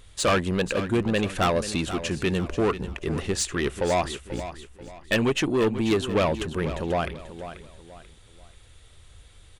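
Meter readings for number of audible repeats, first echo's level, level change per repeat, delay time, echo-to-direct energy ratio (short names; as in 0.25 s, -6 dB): 3, -12.0 dB, -9.5 dB, 0.487 s, -11.5 dB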